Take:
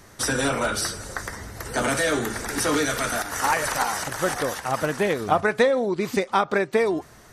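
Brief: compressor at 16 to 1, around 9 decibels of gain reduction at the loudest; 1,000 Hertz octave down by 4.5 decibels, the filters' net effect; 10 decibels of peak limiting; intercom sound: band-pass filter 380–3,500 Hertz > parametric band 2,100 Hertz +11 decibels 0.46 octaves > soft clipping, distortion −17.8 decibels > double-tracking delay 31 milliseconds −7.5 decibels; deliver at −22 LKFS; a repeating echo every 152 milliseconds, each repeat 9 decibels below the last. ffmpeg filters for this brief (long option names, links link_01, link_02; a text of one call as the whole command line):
ffmpeg -i in.wav -filter_complex "[0:a]equalizer=frequency=1000:width_type=o:gain=-7,acompressor=threshold=-24dB:ratio=16,alimiter=level_in=1dB:limit=-24dB:level=0:latency=1,volume=-1dB,highpass=380,lowpass=3500,equalizer=frequency=2100:width_type=o:width=0.46:gain=11,aecho=1:1:152|304|456|608:0.355|0.124|0.0435|0.0152,asoftclip=threshold=-26.5dB,asplit=2[link_01][link_02];[link_02]adelay=31,volume=-7.5dB[link_03];[link_01][link_03]amix=inputs=2:normalize=0,volume=12dB" out.wav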